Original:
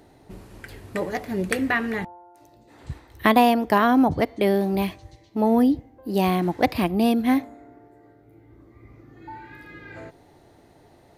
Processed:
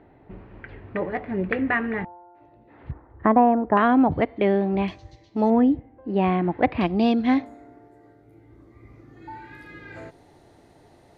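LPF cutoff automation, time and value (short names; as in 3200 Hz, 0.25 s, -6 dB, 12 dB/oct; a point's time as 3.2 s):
LPF 24 dB/oct
2500 Hz
from 2.91 s 1400 Hz
from 3.77 s 2900 Hz
from 4.88 s 6300 Hz
from 5.5 s 2600 Hz
from 6.81 s 4900 Hz
from 7.46 s 12000 Hz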